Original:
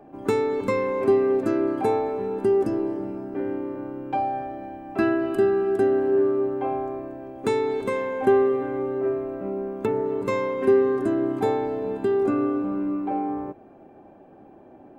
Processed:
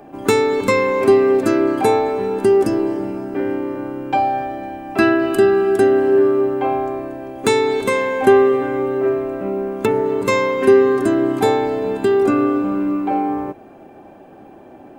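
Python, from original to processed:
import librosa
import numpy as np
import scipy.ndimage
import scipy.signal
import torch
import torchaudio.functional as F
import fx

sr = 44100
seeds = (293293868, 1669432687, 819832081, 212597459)

y = fx.high_shelf(x, sr, hz=2000.0, db=11.0)
y = y * 10.0 ** (6.5 / 20.0)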